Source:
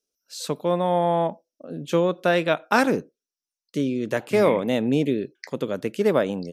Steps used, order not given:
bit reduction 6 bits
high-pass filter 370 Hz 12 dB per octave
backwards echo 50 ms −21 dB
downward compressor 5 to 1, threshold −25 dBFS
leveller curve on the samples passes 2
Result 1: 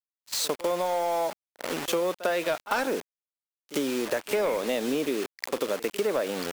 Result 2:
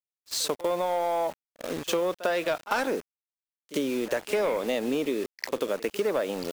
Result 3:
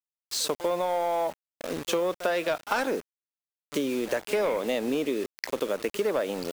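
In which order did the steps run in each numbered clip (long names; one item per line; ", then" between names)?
bit reduction, then high-pass filter, then leveller curve on the samples, then backwards echo, then downward compressor
high-pass filter, then leveller curve on the samples, then bit reduction, then backwards echo, then downward compressor
high-pass filter, then leveller curve on the samples, then backwards echo, then bit reduction, then downward compressor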